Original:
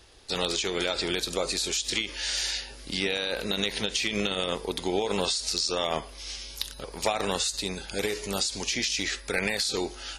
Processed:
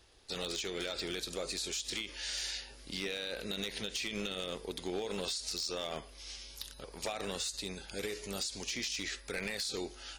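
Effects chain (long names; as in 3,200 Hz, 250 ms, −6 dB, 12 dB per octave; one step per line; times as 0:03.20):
dynamic equaliser 920 Hz, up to −5 dB, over −45 dBFS, Q 2.1
hard clipping −21 dBFS, distortion −16 dB
level −8.5 dB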